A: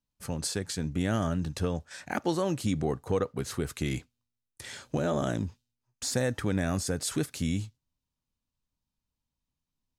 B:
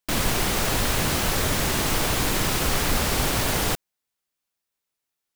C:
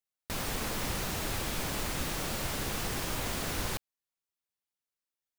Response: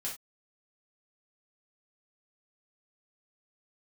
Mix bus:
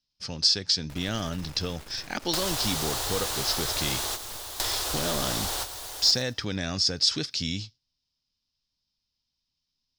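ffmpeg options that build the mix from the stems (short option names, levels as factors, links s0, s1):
-filter_complex "[0:a]lowpass=f=5200:t=q:w=7.6,equalizer=f=3500:w=0.97:g=10,volume=0.668,asplit=2[s0][s1];[1:a]firequalizer=gain_entry='entry(100,0);entry(150,-19);entry(340,1);entry(770,8);entry(2300,1);entry(3600,12)':delay=0.05:min_phase=1,adelay=2250,volume=0.75,asplit=2[s2][s3];[s3]volume=0.0891[s4];[2:a]aeval=exprs='max(val(0),0)':c=same,alimiter=level_in=1.78:limit=0.0631:level=0:latency=1:release=87,volume=0.562,adelay=600,volume=0.708[s5];[s1]apad=whole_len=339916[s6];[s2][s6]sidechaingate=range=0.0224:threshold=0.002:ratio=16:detection=peak[s7];[s7][s5]amix=inputs=2:normalize=0,highshelf=f=10000:g=-6,acompressor=threshold=0.0355:ratio=6,volume=1[s8];[s4]aecho=0:1:111|222|333|444|555:1|0.35|0.122|0.0429|0.015[s9];[s0][s8][s9]amix=inputs=3:normalize=0"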